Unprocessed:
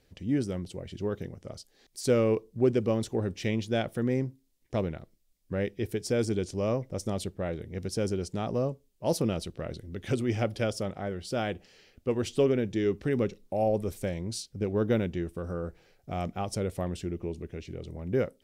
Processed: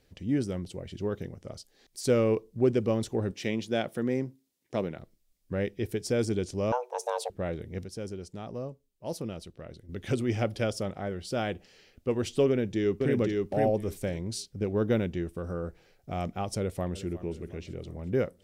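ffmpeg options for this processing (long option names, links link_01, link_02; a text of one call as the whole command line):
ffmpeg -i in.wav -filter_complex "[0:a]asettb=1/sr,asplit=3[link_01][link_02][link_03];[link_01]atrim=end=3.314[link_04];[link_02]atrim=start=3.31:end=4.99,asetpts=PTS-STARTPTS,afade=type=in:duration=0.004:curve=qsin,afade=type=out:start_time=1.676:duration=0.004:curve=qsin,highpass=160[link_05];[link_03]atrim=start=4.986[link_06];[link_04][link_05]acrossfade=duration=0.004:curve1=hsin:curve2=qsin[link_07];[link_07][link_06]acrossfade=duration=0.004:curve1=qsin:curve2=hsin,asettb=1/sr,asplit=3[link_08][link_09][link_10];[link_08]atrim=end=6.724[link_11];[link_09]atrim=start=6.72:end=7.3,asetpts=PTS-STARTPTS,afade=type=in:duration=0.004:curve=qsin,afade=type=out:start_time=0.576:duration=0.004:curve=qsin,afreqshift=360[link_12];[link_10]atrim=start=7.296[link_13];[link_11][link_12]acrossfade=duration=0.004:curve1=hsin:curve2=qsin[link_14];[link_14][link_13]acrossfade=duration=0.004:curve1=qsin:curve2=hsin,asplit=2[link_15][link_16];[link_16]afade=type=in:start_time=12.49:duration=0.01,afade=type=out:start_time=13.18:duration=0.01,aecho=0:1:510|1020|1530:0.749894|0.112484|0.0168726[link_17];[link_15][link_17]amix=inputs=2:normalize=0,asplit=2[link_18][link_19];[link_19]afade=type=in:start_time=16.58:duration=0.01,afade=type=out:start_time=17.18:duration=0.01,aecho=0:1:360|720|1080|1440|1800:0.158489|0.0871691|0.047943|0.0263687|0.0145028[link_20];[link_18][link_20]amix=inputs=2:normalize=0,asplit=3[link_21][link_22][link_23];[link_21]atrim=end=7.842[link_24];[link_22]atrim=start=7.838:end=9.892,asetpts=PTS-STARTPTS,volume=-8dB[link_25];[link_23]atrim=start=9.888[link_26];[link_24][link_25]acrossfade=duration=0.004:curve1=hsin:curve2=hsin[link_27];[link_27][link_26]acrossfade=duration=0.004:curve1=hsin:curve2=hsin" out.wav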